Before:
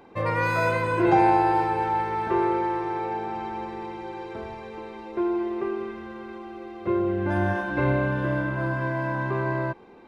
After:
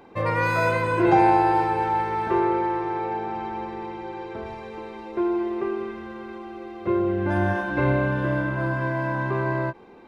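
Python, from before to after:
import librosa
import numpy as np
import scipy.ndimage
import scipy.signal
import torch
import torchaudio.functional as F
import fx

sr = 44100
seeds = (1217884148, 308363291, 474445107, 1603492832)

y = fx.high_shelf(x, sr, hz=7000.0, db=-10.0, at=(2.39, 4.46))
y = fx.end_taper(y, sr, db_per_s=460.0)
y = F.gain(torch.from_numpy(y), 1.5).numpy()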